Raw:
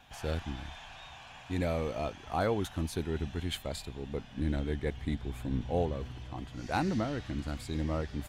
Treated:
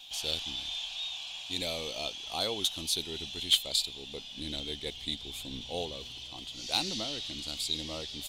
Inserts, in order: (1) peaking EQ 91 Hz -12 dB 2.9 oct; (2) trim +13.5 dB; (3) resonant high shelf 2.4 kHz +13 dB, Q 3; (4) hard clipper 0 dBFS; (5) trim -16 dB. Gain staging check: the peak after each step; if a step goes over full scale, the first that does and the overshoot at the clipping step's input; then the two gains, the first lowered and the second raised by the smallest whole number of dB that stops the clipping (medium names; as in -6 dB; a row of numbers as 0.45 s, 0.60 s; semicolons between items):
-18.0 dBFS, -4.5 dBFS, +7.0 dBFS, 0.0 dBFS, -16.0 dBFS; step 3, 7.0 dB; step 2 +6.5 dB, step 5 -9 dB